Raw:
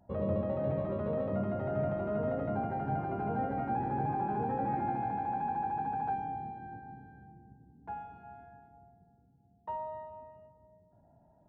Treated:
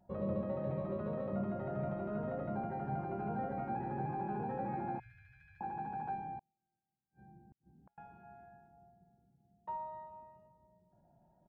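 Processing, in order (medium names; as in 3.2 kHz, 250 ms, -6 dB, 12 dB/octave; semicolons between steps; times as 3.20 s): 4.99–5.61 s: elliptic band-stop 100–1900 Hz, stop band 40 dB; comb 5.5 ms, depth 44%; 6.39–7.98 s: inverted gate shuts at -44 dBFS, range -39 dB; trim -5 dB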